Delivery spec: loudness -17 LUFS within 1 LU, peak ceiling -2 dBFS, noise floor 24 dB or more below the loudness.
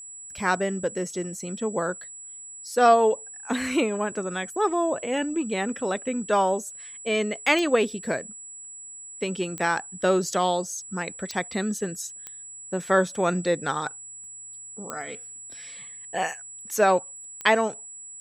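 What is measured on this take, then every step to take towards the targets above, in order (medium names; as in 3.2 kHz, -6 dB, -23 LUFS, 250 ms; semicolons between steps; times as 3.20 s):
clicks found 6; steady tone 7.8 kHz; tone level -39 dBFS; loudness -26.0 LUFS; peak level -6.0 dBFS; loudness target -17.0 LUFS
-> de-click; band-stop 7.8 kHz, Q 30; trim +9 dB; peak limiter -2 dBFS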